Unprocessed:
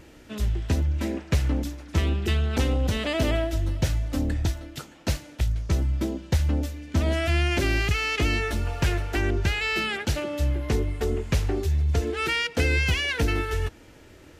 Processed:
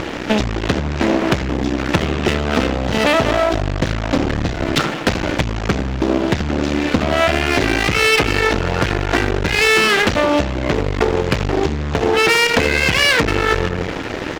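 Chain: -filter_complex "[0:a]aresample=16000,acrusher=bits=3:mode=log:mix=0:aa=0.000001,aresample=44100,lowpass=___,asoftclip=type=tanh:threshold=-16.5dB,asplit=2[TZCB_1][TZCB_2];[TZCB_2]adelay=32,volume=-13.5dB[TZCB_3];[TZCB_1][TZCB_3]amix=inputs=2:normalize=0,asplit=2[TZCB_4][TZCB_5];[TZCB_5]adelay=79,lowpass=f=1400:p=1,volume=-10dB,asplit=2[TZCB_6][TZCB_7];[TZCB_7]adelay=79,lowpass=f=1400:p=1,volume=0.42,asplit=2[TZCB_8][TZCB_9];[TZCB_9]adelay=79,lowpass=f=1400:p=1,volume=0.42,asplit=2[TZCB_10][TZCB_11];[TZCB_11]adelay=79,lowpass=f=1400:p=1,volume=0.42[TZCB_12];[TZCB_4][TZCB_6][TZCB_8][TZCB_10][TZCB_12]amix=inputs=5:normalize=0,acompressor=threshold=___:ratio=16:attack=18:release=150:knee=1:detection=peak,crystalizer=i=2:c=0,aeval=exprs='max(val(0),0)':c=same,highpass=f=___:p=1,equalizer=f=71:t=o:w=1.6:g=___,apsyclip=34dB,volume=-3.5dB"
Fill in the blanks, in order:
2400, -38dB, 54, -7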